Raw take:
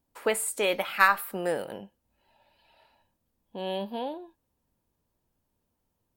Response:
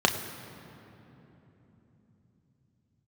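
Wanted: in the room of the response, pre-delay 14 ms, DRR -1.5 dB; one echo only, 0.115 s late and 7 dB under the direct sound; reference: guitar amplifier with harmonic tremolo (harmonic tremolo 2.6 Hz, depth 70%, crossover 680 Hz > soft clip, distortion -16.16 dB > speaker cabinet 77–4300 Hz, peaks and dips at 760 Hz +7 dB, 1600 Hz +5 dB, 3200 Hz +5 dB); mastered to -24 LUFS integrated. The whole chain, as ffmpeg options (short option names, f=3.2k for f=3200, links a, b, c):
-filter_complex "[0:a]aecho=1:1:115:0.447,asplit=2[a][b];[1:a]atrim=start_sample=2205,adelay=14[c];[b][c]afir=irnorm=-1:irlink=0,volume=-13.5dB[d];[a][d]amix=inputs=2:normalize=0,acrossover=split=680[e][f];[e]aeval=exprs='val(0)*(1-0.7/2+0.7/2*cos(2*PI*2.6*n/s))':c=same[g];[f]aeval=exprs='val(0)*(1-0.7/2-0.7/2*cos(2*PI*2.6*n/s))':c=same[h];[g][h]amix=inputs=2:normalize=0,asoftclip=threshold=-14.5dB,highpass=77,equalizer=f=760:t=q:w=4:g=7,equalizer=f=1.6k:t=q:w=4:g=5,equalizer=f=3.2k:t=q:w=4:g=5,lowpass=f=4.3k:w=0.5412,lowpass=f=4.3k:w=1.3066,volume=2.5dB"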